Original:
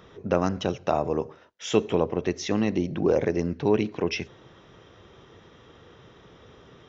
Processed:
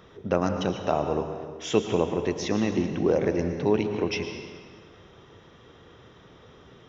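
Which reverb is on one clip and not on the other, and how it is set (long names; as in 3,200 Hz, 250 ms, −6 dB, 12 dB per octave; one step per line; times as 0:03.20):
dense smooth reverb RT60 1.6 s, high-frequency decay 0.85×, pre-delay 95 ms, DRR 6.5 dB
level −1 dB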